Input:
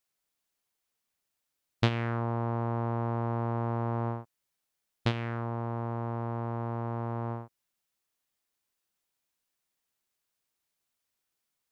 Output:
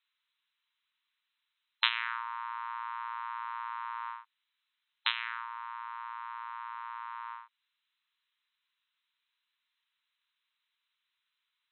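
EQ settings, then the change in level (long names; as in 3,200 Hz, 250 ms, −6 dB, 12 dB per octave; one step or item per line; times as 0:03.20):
linear-phase brick-wall band-pass 880–4,100 Hz
spectral tilt +4 dB per octave
+2.0 dB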